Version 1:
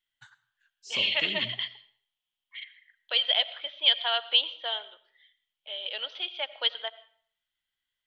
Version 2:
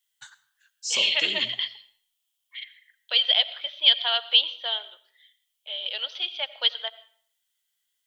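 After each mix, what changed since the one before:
first voice +5.0 dB; master: add tone controls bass -13 dB, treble +14 dB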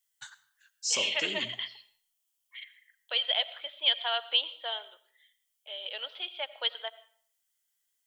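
second voice: add air absorption 400 m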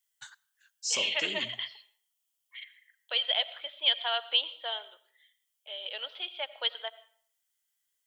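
first voice: send -11.0 dB

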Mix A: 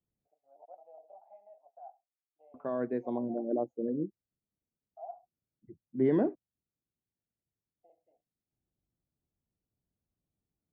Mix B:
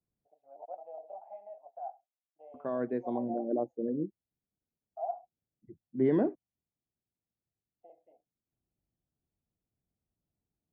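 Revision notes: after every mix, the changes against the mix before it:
first voice +8.5 dB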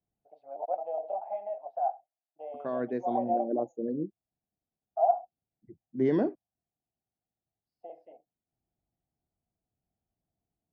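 first voice +10.5 dB; master: remove air absorption 300 m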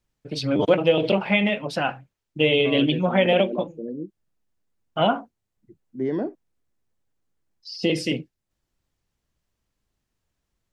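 first voice: remove Butterworth band-pass 720 Hz, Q 5

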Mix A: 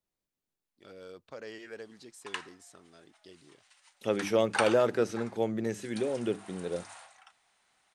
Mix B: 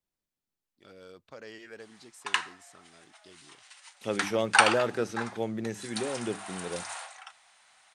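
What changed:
background +10.5 dB; master: add bell 460 Hz -3 dB 1.4 oct

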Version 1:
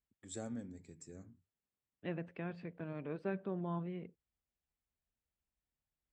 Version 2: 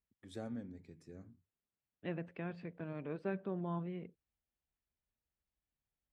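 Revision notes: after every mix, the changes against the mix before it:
first voice: remove synth low-pass 7600 Hz, resonance Q 12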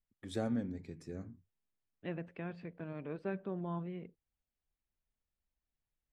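first voice +8.5 dB; master: remove HPF 42 Hz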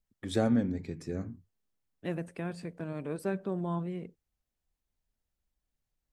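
first voice +8.5 dB; second voice: remove ladder low-pass 3800 Hz, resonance 25%

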